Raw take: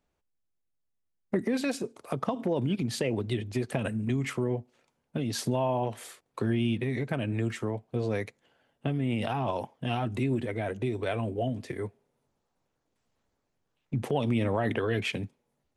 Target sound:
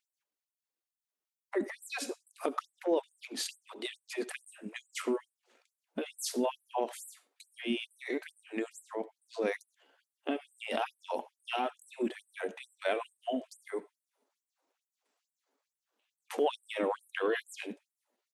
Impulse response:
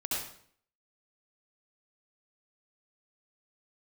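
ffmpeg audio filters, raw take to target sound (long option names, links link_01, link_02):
-filter_complex "[0:a]atempo=0.86,asplit=2[link_01][link_02];[1:a]atrim=start_sample=2205,afade=type=out:start_time=0.17:duration=0.01,atrim=end_sample=7938[link_03];[link_02][link_03]afir=irnorm=-1:irlink=0,volume=-20dB[link_04];[link_01][link_04]amix=inputs=2:normalize=0,afftfilt=real='re*gte(b*sr/1024,210*pow(7800/210,0.5+0.5*sin(2*PI*2.3*pts/sr)))':imag='im*gte(b*sr/1024,210*pow(7800/210,0.5+0.5*sin(2*PI*2.3*pts/sr)))':win_size=1024:overlap=0.75"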